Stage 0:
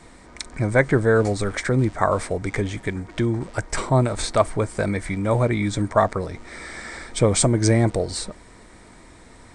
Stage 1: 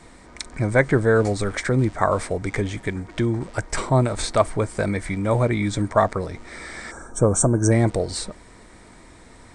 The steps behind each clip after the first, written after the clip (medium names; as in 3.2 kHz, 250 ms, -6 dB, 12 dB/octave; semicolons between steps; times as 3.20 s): time-frequency box 6.91–7.71 s, 1.7–5.5 kHz -22 dB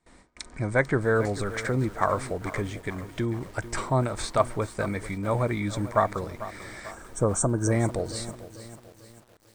gate with hold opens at -35 dBFS; dynamic bell 1.2 kHz, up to +4 dB, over -35 dBFS, Q 1.3; bit-crushed delay 444 ms, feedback 55%, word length 6-bit, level -14 dB; trim -6.5 dB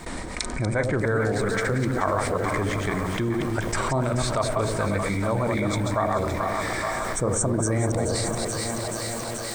chunks repeated in reverse 132 ms, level -4 dB; two-band feedback delay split 670 Hz, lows 90 ms, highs 430 ms, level -10 dB; level flattener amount 70%; trim -4.5 dB